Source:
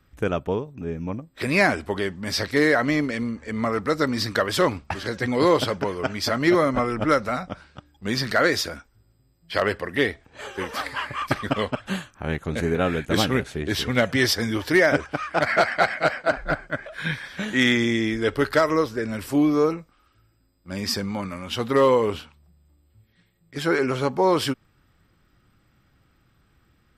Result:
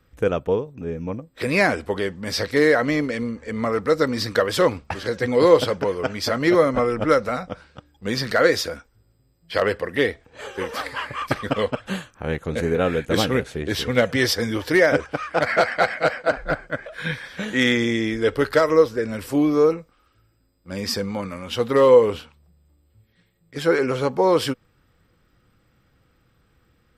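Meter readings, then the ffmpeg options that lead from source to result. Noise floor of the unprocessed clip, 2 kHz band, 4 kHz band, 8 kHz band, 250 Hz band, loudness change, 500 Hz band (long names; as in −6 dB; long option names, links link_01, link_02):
−63 dBFS, 0.0 dB, 0.0 dB, 0.0 dB, 0.0 dB, +2.0 dB, +4.0 dB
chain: -af "equalizer=frequency=490:width=6.8:gain=9.5"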